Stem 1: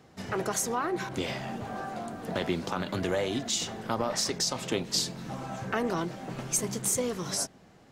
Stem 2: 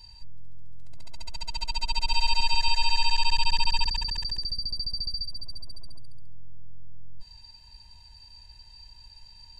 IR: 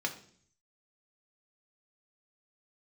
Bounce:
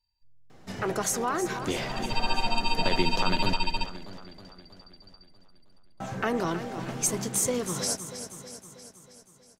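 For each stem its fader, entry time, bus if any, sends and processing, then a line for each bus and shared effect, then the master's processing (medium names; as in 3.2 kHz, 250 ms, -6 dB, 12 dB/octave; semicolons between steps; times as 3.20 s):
+1.5 dB, 0.50 s, muted 3.54–6.00 s, no send, echo send -11 dB, none
-4.0 dB, 0.00 s, send -6 dB, no echo send, upward expansion 2.5:1, over -35 dBFS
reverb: on, RT60 0.55 s, pre-delay 3 ms
echo: feedback delay 319 ms, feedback 59%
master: none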